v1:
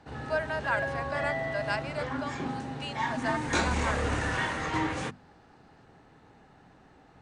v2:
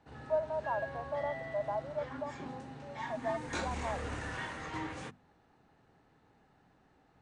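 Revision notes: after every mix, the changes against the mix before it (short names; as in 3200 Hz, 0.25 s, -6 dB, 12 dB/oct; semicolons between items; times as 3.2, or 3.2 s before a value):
speech: add steep low-pass 960 Hz; background -10.0 dB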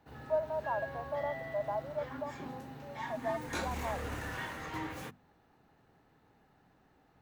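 master: remove brick-wall FIR low-pass 9800 Hz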